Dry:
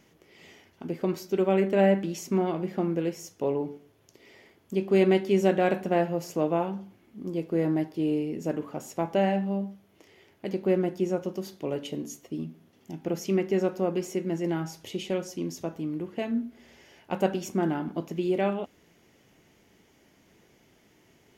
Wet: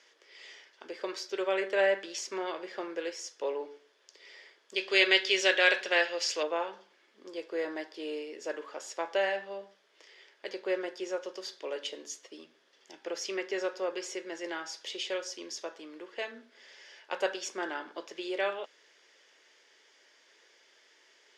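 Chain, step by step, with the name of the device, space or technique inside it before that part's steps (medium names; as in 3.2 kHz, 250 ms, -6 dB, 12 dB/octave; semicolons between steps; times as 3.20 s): 4.76–6.43 s: frequency weighting D; phone speaker on a table (cabinet simulation 480–8500 Hz, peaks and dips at 730 Hz -9 dB, 1.7 kHz +7 dB, 3.5 kHz +6 dB, 4.9 kHz +8 dB)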